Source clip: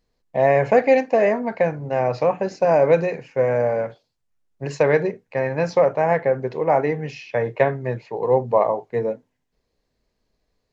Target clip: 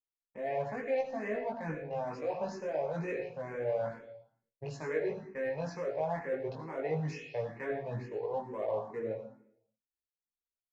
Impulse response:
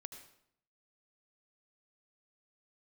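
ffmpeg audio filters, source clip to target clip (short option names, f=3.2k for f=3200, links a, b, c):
-filter_complex "[0:a]agate=range=-33dB:threshold=-32dB:ratio=3:detection=peak,areverse,acompressor=threshold=-26dB:ratio=6,areverse,asplit=2[a][b];[b]adelay=19,volume=-2.5dB[c];[a][c]amix=inputs=2:normalize=0,asplit=2[d][e];[e]asoftclip=type=hard:threshold=-29.5dB,volume=-11dB[f];[d][f]amix=inputs=2:normalize=0[g];[1:a]atrim=start_sample=2205[h];[g][h]afir=irnorm=-1:irlink=0,asplit=2[i][j];[j]afreqshift=2.2[k];[i][k]amix=inputs=2:normalize=1,volume=-1.5dB"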